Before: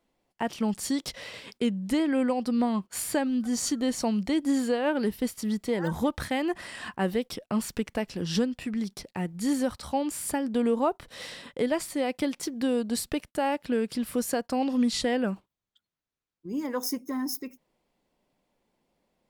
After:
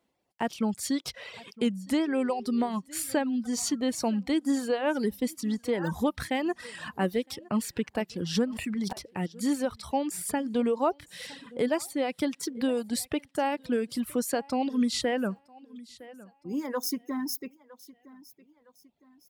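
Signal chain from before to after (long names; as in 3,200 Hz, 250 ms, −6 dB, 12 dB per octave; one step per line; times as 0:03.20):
high-pass filter 64 Hz
repeating echo 961 ms, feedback 37%, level −19.5 dB
0:02.05–0:02.69: steady tone 400 Hz −41 dBFS
reverb reduction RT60 1 s
0:08.45–0:08.93: level that may fall only so fast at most 32 dB per second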